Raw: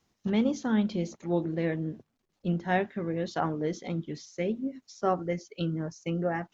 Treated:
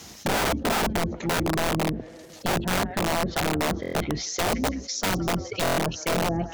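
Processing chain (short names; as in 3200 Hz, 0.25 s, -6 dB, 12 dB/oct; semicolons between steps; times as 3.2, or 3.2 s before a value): octaver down 2 oct, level -1 dB; treble ducked by the level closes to 410 Hz, closed at -24.5 dBFS; HPF 79 Hz 12 dB/oct; high shelf 3800 Hz +11 dB; on a send: thin delay 0.166 s, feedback 52%, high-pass 1500 Hz, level -9 dB; on the sum: wrapped overs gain 25.5 dB; bell 670 Hz +3.5 dB 0.22 oct; notch 1100 Hz, Q 27; stuck buffer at 3.81/5.64, samples 1024, times 5; fast leveller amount 50%; gain +5.5 dB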